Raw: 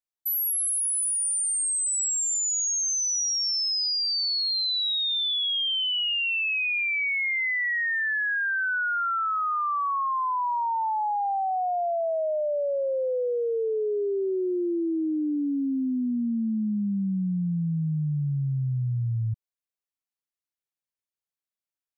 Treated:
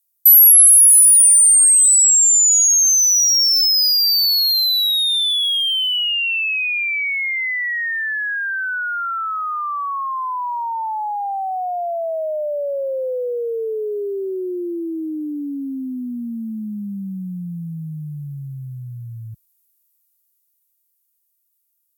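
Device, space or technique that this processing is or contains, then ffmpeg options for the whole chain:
FM broadcast chain: -filter_complex "[0:a]highpass=44,dynaudnorm=framelen=390:gausssize=13:maxgain=5.5dB,acrossover=split=220|450[link_01][link_02][link_03];[link_01]acompressor=threshold=-35dB:ratio=4[link_04];[link_02]acompressor=threshold=-30dB:ratio=4[link_05];[link_03]acompressor=threshold=-23dB:ratio=4[link_06];[link_04][link_05][link_06]amix=inputs=3:normalize=0,aemphasis=mode=production:type=50fm,alimiter=limit=-16.5dB:level=0:latency=1,asoftclip=type=hard:threshold=-19dB,lowpass=frequency=15000:width=0.5412,lowpass=frequency=15000:width=1.3066,aemphasis=mode=production:type=50fm"

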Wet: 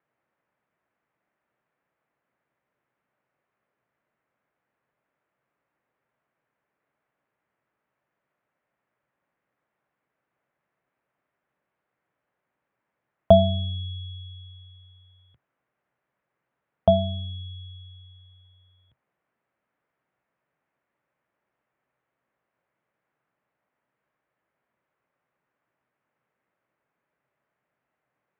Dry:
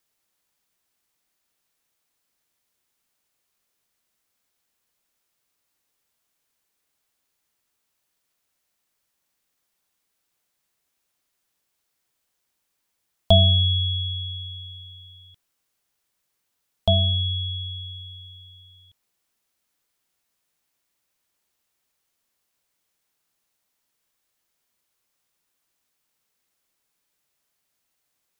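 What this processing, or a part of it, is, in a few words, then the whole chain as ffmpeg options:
bass cabinet: -af "highpass=76,equalizer=frequency=91:width_type=q:width=4:gain=-10,equalizer=frequency=130:width_type=q:width=4:gain=6,equalizer=frequency=590:width_type=q:width=4:gain=4,lowpass=frequency=2000:width=0.5412,lowpass=frequency=2000:width=1.3066,volume=4dB"

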